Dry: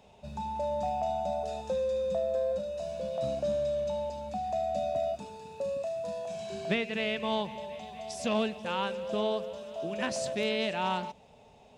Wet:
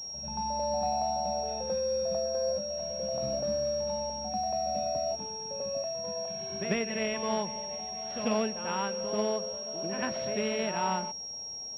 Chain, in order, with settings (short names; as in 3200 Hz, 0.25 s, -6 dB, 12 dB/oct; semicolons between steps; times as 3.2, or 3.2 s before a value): reverse echo 93 ms -8 dB; pulse-width modulation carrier 5600 Hz